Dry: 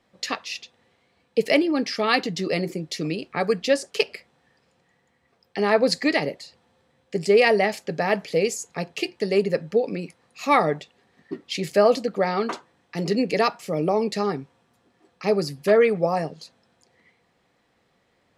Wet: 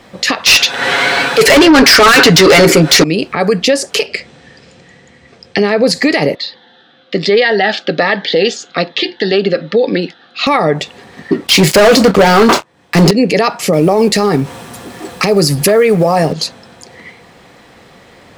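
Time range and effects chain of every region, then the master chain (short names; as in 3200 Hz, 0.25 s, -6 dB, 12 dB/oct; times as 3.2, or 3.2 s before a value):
0.46–3.04 bell 1500 Hz +13 dB 0.21 oct + comb 7.2 ms, depth 52% + overdrive pedal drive 34 dB, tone 7000 Hz, clips at -1.5 dBFS
4.06–5.84 LPF 8100 Hz 24 dB/oct + bell 970 Hz -8 dB 1.1 oct
6.35–10.47 speaker cabinet 390–3800 Hz, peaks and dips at 430 Hz -9 dB, 620 Hz -7 dB, 1000 Hz -9 dB, 1600 Hz +4 dB, 2400 Hz -10 dB, 3600 Hz +8 dB + cascading phaser falling 1.2 Hz
11.47–13.11 sample leveller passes 5 + doubler 27 ms -13 dB
13.73–16.33 G.711 law mismatch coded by mu + bell 10000 Hz +6.5 dB 1.1 oct
whole clip: compressor 5:1, threshold -29 dBFS; maximiser +26.5 dB; gain -1 dB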